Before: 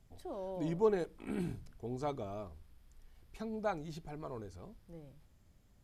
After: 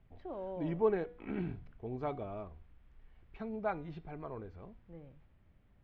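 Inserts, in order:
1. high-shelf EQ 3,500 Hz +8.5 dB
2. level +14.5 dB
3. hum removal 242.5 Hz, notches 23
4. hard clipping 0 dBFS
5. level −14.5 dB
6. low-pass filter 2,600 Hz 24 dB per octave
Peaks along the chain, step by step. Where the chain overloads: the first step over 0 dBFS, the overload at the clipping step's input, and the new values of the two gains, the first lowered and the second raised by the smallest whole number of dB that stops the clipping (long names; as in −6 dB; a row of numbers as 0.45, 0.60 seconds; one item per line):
−18.0, −3.5, −3.5, −3.5, −18.0, −18.0 dBFS
no step passes full scale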